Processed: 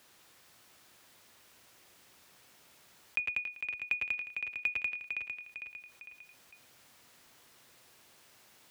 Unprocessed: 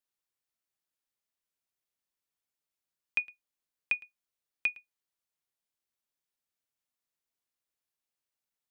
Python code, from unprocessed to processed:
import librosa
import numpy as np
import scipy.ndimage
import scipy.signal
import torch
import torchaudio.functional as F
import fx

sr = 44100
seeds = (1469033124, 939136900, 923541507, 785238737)

p1 = fx.echo_multitap(x, sr, ms=(102, 110, 192, 280, 514), db=(-9.5, -10.5, -5.0, -17.5, -12.5))
p2 = fx.schmitt(p1, sr, flips_db=-27.5)
p3 = p1 + (p2 * librosa.db_to_amplitude(-6.5))
p4 = scipy.signal.sosfilt(scipy.signal.butter(2, 57.0, 'highpass', fs=sr, output='sos'), p3)
p5 = fx.high_shelf(p4, sr, hz=5500.0, db=-8.0)
p6 = p5 + fx.echo_feedback(p5, sr, ms=453, feedback_pct=22, wet_db=-13.5, dry=0)
p7 = fx.env_flatten(p6, sr, amount_pct=50)
y = p7 * librosa.db_to_amplitude(-2.0)